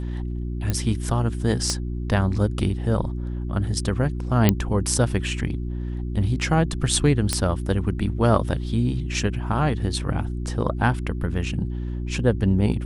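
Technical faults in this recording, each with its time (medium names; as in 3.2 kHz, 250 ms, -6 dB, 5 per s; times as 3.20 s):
hum 60 Hz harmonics 6 -28 dBFS
0.70 s: pop -11 dBFS
1.70 s: pop -11 dBFS
4.49 s: pop -3 dBFS
7.33 s: pop -7 dBFS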